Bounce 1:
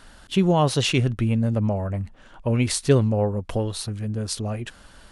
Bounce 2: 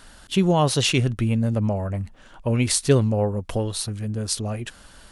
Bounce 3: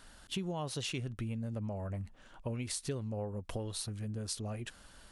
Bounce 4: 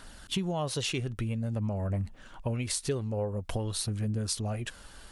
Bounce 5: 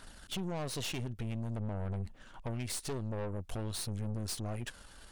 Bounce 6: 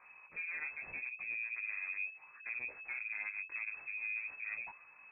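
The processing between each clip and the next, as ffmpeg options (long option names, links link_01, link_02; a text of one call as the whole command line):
ffmpeg -i in.wav -af "highshelf=frequency=4800:gain=6" out.wav
ffmpeg -i in.wav -af "acompressor=threshold=-26dB:ratio=5,volume=-9dB" out.wav
ffmpeg -i in.wav -af "aphaser=in_gain=1:out_gain=1:delay=2.6:decay=0.25:speed=0.5:type=triangular,volume=6dB" out.wav
ffmpeg -i in.wav -af "aeval=exprs='(tanh(50.1*val(0)+0.7)-tanh(0.7))/50.1':channel_layout=same" out.wav
ffmpeg -i in.wav -af "lowpass=frequency=2200:width_type=q:width=0.5098,lowpass=frequency=2200:width_type=q:width=0.6013,lowpass=frequency=2200:width_type=q:width=0.9,lowpass=frequency=2200:width_type=q:width=2.563,afreqshift=-2600,flanger=delay=16:depth=3.6:speed=0.73,volume=-2dB" out.wav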